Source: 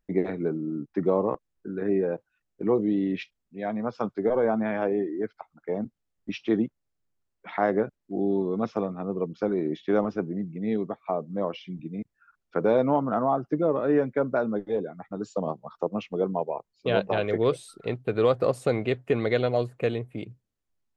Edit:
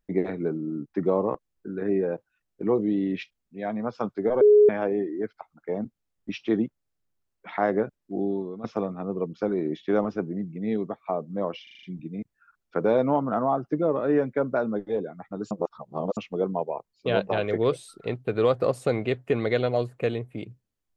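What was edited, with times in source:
4.41–4.69 bleep 418 Hz -11.5 dBFS
8.17–8.64 fade out linear, to -14.5 dB
11.63 stutter 0.04 s, 6 plays
15.31–15.97 reverse

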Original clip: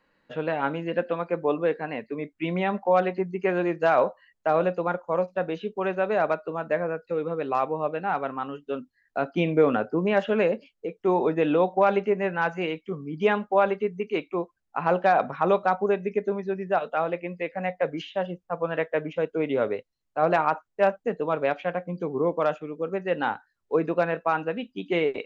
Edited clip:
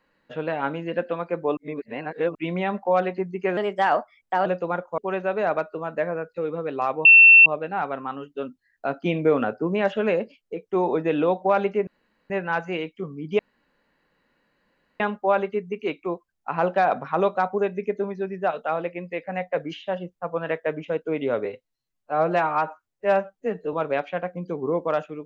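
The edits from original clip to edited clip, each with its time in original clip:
1.57–2.35 reverse
3.57–4.62 speed 118%
5.14–5.71 cut
7.78 add tone 2700 Hz -7 dBFS 0.41 s
12.19 insert room tone 0.43 s
13.28 insert room tone 1.61 s
19.73–21.25 stretch 1.5×

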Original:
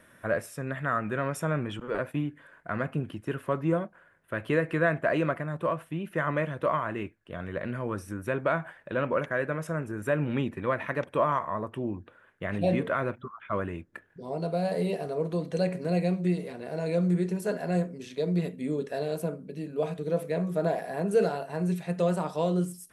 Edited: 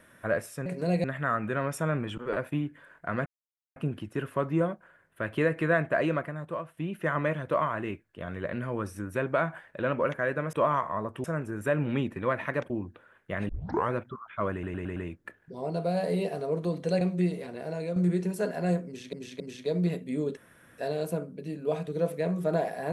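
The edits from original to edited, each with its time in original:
2.88 insert silence 0.50 s
5.09–5.89 fade out, to -10 dB
11.11–11.82 move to 9.65
12.61 tape start 0.43 s
13.64 stutter 0.11 s, 5 plays
15.69–16.07 move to 0.66
16.65–17.02 fade out, to -8 dB
17.92–18.19 loop, 3 plays
18.89 insert room tone 0.41 s

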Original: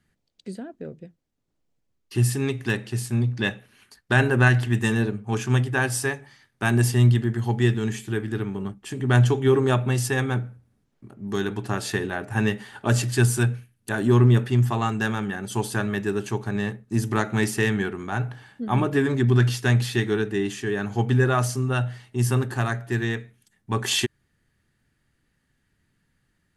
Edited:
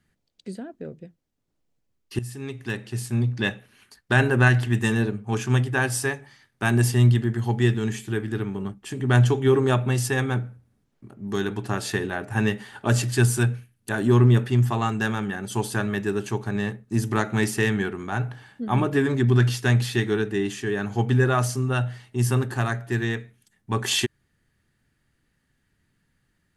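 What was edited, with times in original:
2.19–3.24 fade in, from -16 dB

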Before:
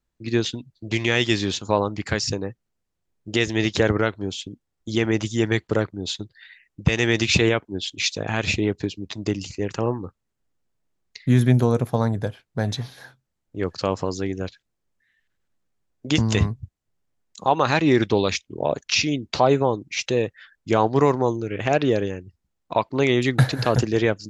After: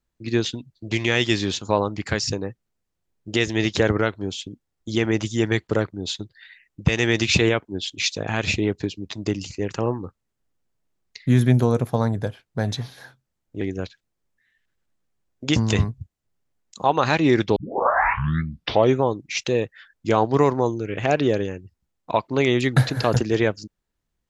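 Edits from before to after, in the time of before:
13.61–14.23 cut
18.18 tape start 1.45 s

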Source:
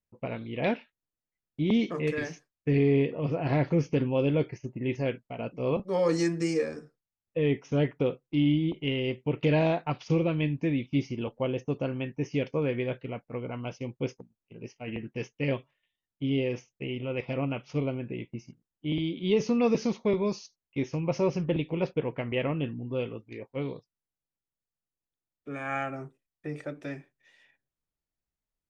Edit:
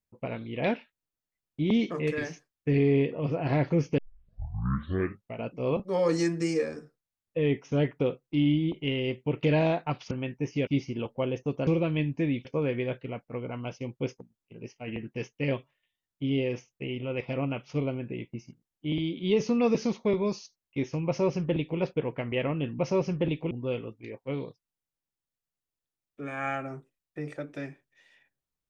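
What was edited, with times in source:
3.98 tape start 1.44 s
10.11–10.89 swap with 11.89–12.45
21.07–21.79 copy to 22.79

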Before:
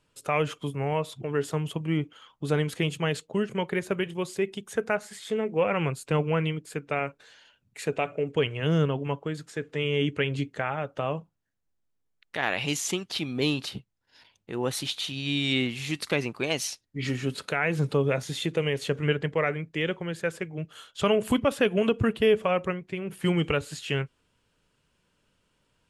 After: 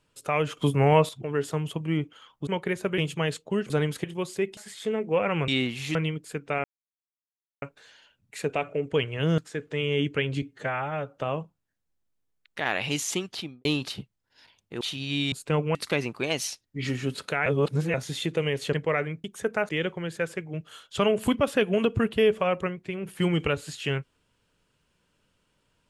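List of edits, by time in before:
0.57–1.09 gain +8.5 dB
2.47–2.81 swap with 3.53–4.04
4.57–5.02 move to 19.73
5.93–6.36 swap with 15.48–15.95
7.05 insert silence 0.98 s
8.81–9.4 cut
10.44–10.94 stretch 1.5×
13.06–13.42 studio fade out
14.58–14.97 cut
17.66–18.14 reverse
18.93–19.22 cut

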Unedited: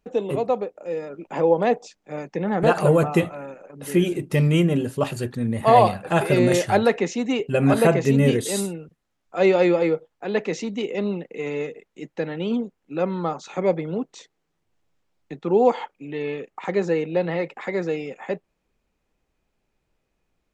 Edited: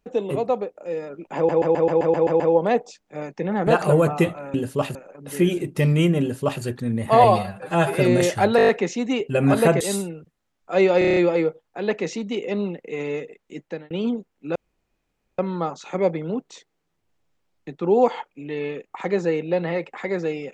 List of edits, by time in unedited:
1.36 stutter 0.13 s, 9 plays
4.76–5.17 copy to 3.5
5.79–6.26 stretch 1.5×
6.88 stutter 0.02 s, 7 plays
8–8.45 cut
9.63 stutter 0.03 s, 7 plays
12.09–12.37 fade out
13.02 insert room tone 0.83 s

